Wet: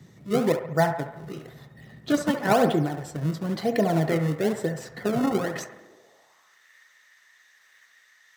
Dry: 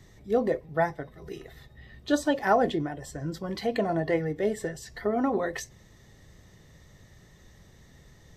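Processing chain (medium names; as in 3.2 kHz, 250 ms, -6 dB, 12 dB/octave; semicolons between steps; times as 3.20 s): harmonic-percussive split harmonic -3 dB; in parallel at -4.5 dB: decimation with a swept rate 31×, swing 160% 1 Hz; on the sum: feedback echo behind a band-pass 69 ms, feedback 56%, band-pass 1 kHz, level -7 dB; high-pass sweep 150 Hz -> 1.7 kHz, 5.54–6.63 s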